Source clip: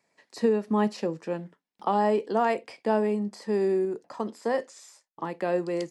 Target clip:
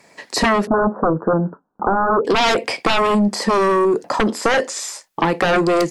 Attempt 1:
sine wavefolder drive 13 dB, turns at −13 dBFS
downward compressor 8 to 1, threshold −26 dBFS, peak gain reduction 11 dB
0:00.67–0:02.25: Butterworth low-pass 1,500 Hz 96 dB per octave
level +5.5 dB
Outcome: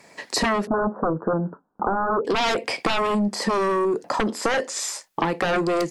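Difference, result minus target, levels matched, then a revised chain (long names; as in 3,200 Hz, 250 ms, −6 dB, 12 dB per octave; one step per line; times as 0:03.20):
downward compressor: peak gain reduction +6 dB
sine wavefolder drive 13 dB, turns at −13 dBFS
downward compressor 8 to 1, threshold −19 dBFS, peak gain reduction 5 dB
0:00.67–0:02.25: Butterworth low-pass 1,500 Hz 96 dB per octave
level +5.5 dB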